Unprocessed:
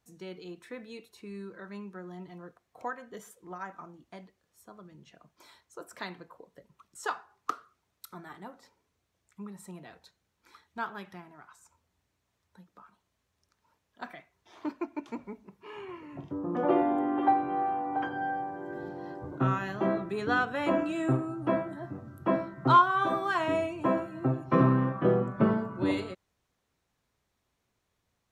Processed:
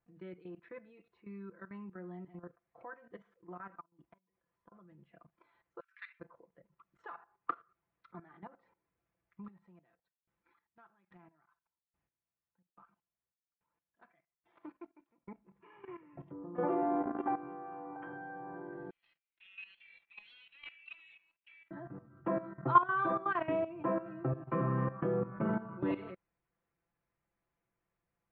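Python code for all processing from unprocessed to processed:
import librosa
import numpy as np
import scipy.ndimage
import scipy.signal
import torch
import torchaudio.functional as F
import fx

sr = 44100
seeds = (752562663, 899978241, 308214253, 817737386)

y = fx.chain(x, sr, fx.gate_flip(shuts_db=-41.0, range_db=-27),
    fx.small_body(hz=(1000.0, 3300.0), ring_ms=70, db=12), at=(3.8, 4.72))
y = fx.chain(y, sr, fx.block_float(bits=5),
    fx.steep_highpass(hz=1600.0, slope=36),
    fx.comb(ms=6.7, depth=0.43), at=(5.8, 6.2))
y = fx.chain(y, sr, fx.block_float(bits=5),
    fx.high_shelf(hz=5900.0, db=10.0),
    fx.tremolo_decay(direction='decaying', hz=1.2, depth_db=26), at=(9.44, 15.31))
y = fx.chain(y, sr, fx.steep_highpass(hz=2300.0, slope=72),
    fx.leveller(passes=3), at=(18.9, 21.71))
y = scipy.signal.sosfilt(scipy.signal.butter(4, 2400.0, 'lowpass', fs=sr, output='sos'), y)
y = y + 0.58 * np.pad(y, (int(5.9 * sr / 1000.0), 0))[:len(y)]
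y = fx.level_steps(y, sr, step_db=14)
y = F.gain(torch.from_numpy(y), -3.5).numpy()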